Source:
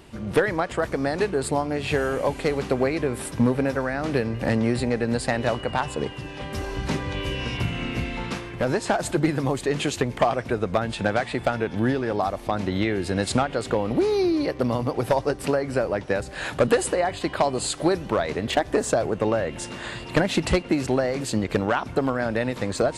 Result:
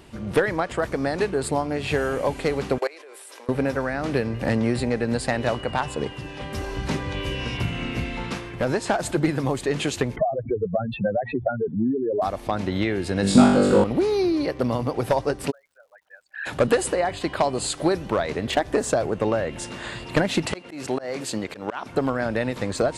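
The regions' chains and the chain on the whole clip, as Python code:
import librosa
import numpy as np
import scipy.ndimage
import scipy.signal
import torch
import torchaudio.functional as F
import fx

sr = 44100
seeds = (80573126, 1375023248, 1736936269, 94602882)

y = fx.chain(x, sr, fx.steep_highpass(hz=390.0, slope=36),
    fx.high_shelf(hz=2100.0, db=8.0),
    fx.level_steps(step_db=22), at=(2.78, 3.49))
y = fx.chain(y, sr, fx.spec_expand(power=3.7),
    fx.band_squash(depth_pct=70), at=(10.16, 12.22))
y = fx.chain(y, sr, fx.curve_eq(hz=(120.0, 200.0, 790.0), db=(0, 9, -2)),
    fx.room_flutter(wall_m=3.5, rt60_s=0.78), at=(13.22, 13.84))
y = fx.envelope_sharpen(y, sr, power=3.0, at=(15.5, 16.45), fade=0.02)
y = fx.cheby2_highpass(y, sr, hz=370.0, order=4, stop_db=60, at=(15.5, 16.45), fade=0.02)
y = fx.dmg_crackle(y, sr, seeds[0], per_s=220.0, level_db=-58.0, at=(15.5, 16.45), fade=0.02)
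y = fx.chain(y, sr, fx.highpass(hz=310.0, slope=6),
    fx.auto_swell(attack_ms=147.0), at=(20.46, 21.94))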